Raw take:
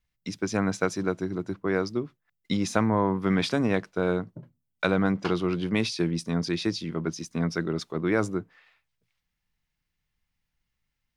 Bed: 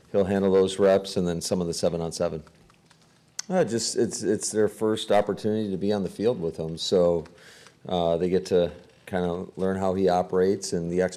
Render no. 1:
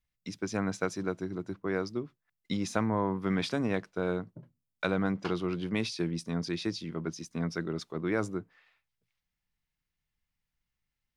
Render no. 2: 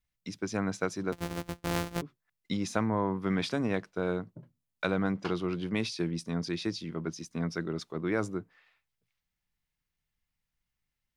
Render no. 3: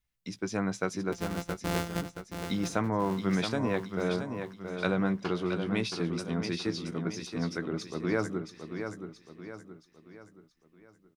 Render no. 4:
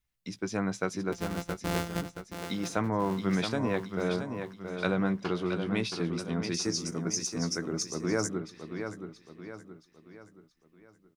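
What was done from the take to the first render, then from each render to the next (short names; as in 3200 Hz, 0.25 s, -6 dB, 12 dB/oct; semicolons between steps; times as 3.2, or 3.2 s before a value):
gain -5.5 dB
1.12–2.02 sample sorter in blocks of 256 samples
doubler 16 ms -11.5 dB; on a send: feedback echo 0.674 s, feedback 44%, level -7.5 dB
2.33–2.77 low shelf 130 Hz -10.5 dB; 6.54–8.29 resonant high shelf 4700 Hz +9 dB, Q 3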